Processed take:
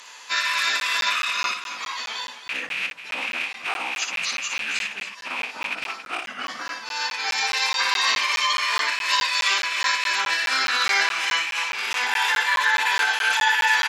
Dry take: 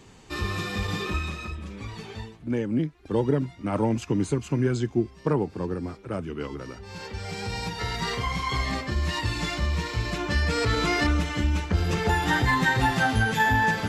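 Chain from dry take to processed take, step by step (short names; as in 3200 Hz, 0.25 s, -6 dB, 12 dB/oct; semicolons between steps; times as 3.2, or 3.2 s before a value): rattling part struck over -29 dBFS, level -20 dBFS; in parallel at -1.5 dB: negative-ratio compressor -29 dBFS, ratio -0.5; on the sum: limiter -16.5 dBFS, peak gain reduction 7.5 dB; Bessel high-pass 1200 Hz, order 4; formant-preserving pitch shift -10 st; added harmonics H 4 -44 dB, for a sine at -17.5 dBFS; on a send: loudspeakers at several distances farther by 20 m -6 dB, 94 m -11 dB; on the sum: crackling interface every 0.21 s, samples 512, zero, from 0.8; gain +8.5 dB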